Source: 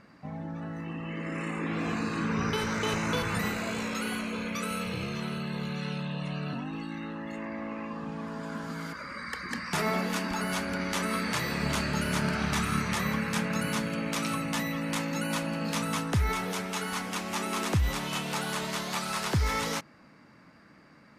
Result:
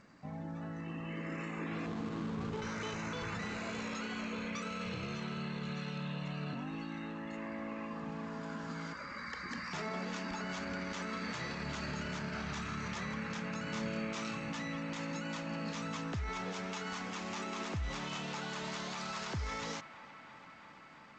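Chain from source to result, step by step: 1.86–2.62 median filter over 25 samples; limiter -26 dBFS, peak gain reduction 9.5 dB; 13.7–14.5 doubler 27 ms -4 dB; band-limited delay 0.335 s, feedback 84%, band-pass 1300 Hz, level -14 dB; gain -5 dB; G.722 64 kbps 16000 Hz

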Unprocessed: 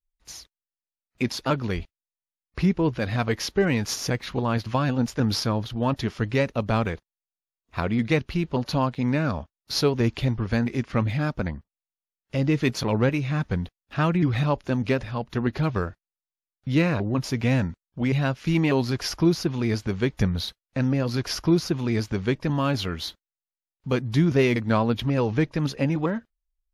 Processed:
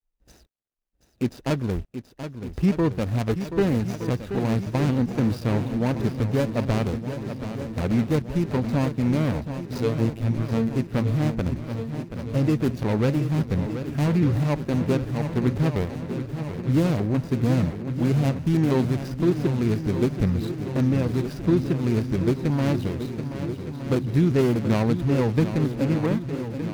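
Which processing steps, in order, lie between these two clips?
median filter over 41 samples; vibrato 0.84 Hz 33 cents; 9.78–10.76 robotiser 113 Hz; in parallel at -0.5 dB: limiter -17.5 dBFS, peak gain reduction 8.5 dB; on the sum: high shelf 5800 Hz +4.5 dB; swung echo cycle 1.216 s, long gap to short 1.5:1, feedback 62%, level -10 dB; gain -3.5 dB

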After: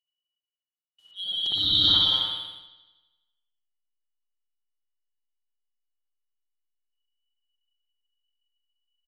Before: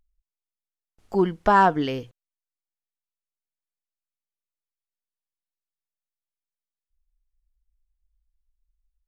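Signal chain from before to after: four-band scrambler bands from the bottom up 2413; gate with hold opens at -53 dBFS; high shelf 2500 Hz +7.5 dB; on a send: loudspeakers at several distances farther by 63 m -6 dB, 95 m -11 dB; on the sum: auto swell 0.701 s; spring tank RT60 1.2 s, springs 58 ms, chirp 35 ms, DRR -7.5 dB; in parallel at -7 dB: backlash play -31.5 dBFS; on the sum: gain -7 dB

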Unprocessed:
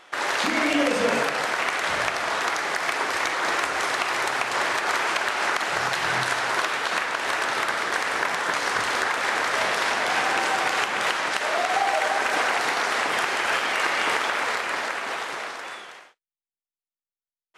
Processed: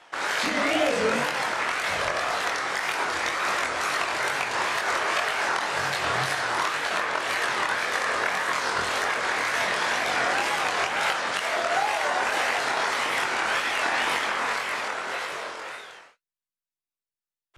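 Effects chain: chorus voices 4, 0.17 Hz, delay 22 ms, depth 1.1 ms; wow and flutter 130 cents; gain +1.5 dB

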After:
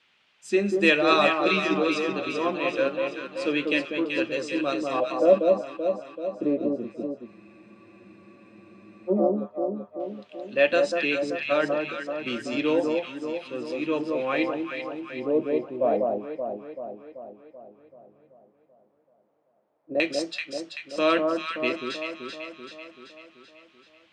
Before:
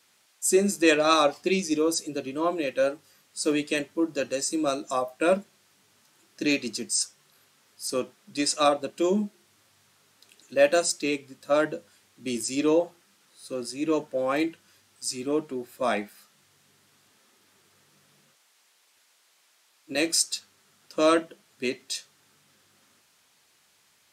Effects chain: LFO low-pass square 0.1 Hz 600–2900 Hz; echo with dull and thin repeats by turns 0.192 s, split 1200 Hz, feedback 75%, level -3 dB; spectral freeze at 7.3, 1.80 s; gain -2 dB

